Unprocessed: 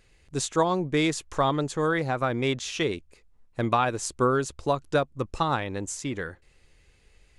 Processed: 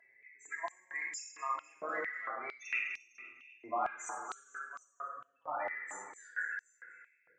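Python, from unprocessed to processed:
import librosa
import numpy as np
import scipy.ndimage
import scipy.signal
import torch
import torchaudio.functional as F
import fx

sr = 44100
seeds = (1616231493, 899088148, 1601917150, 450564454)

p1 = fx.high_shelf_res(x, sr, hz=2800.0, db=-9.0, q=3.0)
p2 = fx.over_compress(p1, sr, threshold_db=-26.0, ratio=-0.5)
p3 = fx.auto_swell(p2, sr, attack_ms=257.0)
p4 = fx.level_steps(p3, sr, step_db=21)
p5 = np.clip(10.0 ** (34.0 / 20.0) * p4, -1.0, 1.0) / 10.0 ** (34.0 / 20.0)
p6 = fx.spec_topn(p5, sr, count=16)
p7 = fx.cheby_harmonics(p6, sr, harmonics=(3,), levels_db=(-37,), full_scale_db=-33.5)
p8 = fx.step_gate(p7, sr, bpm=132, pattern='xxx.xxx.x.x', floor_db=-12.0, edge_ms=4.5)
p9 = p8 + fx.echo_feedback(p8, sr, ms=249, feedback_pct=42, wet_db=-11.0, dry=0)
p10 = fx.room_shoebox(p9, sr, seeds[0], volume_m3=1300.0, walls='mixed', distance_m=3.0)
p11 = fx.filter_held_highpass(p10, sr, hz=4.4, low_hz=670.0, high_hz=5600.0)
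y = p11 * 10.0 ** (1.5 / 20.0)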